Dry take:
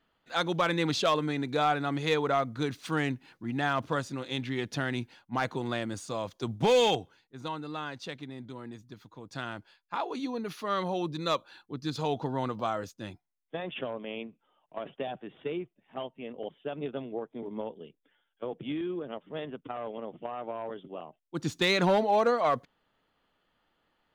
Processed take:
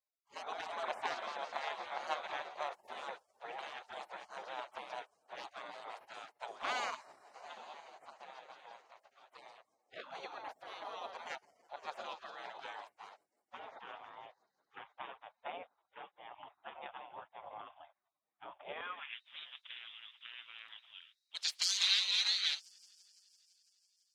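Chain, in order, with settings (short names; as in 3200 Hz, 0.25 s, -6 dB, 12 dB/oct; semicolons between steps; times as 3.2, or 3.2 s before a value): thin delay 0.168 s, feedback 79%, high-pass 2900 Hz, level -13 dB; spectral gate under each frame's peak -25 dB weak; band-pass sweep 730 Hz -> 4400 Hz, 18.72–19.25; gain +16.5 dB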